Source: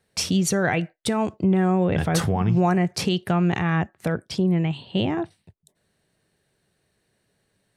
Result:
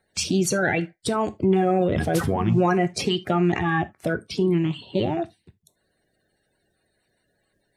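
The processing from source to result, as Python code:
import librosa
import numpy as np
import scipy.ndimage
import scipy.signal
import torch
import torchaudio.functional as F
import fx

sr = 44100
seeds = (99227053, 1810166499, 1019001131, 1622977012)

y = fx.spec_quant(x, sr, step_db=30)
y = fx.rev_gated(y, sr, seeds[0], gate_ms=100, shape='falling', drr_db=11.5)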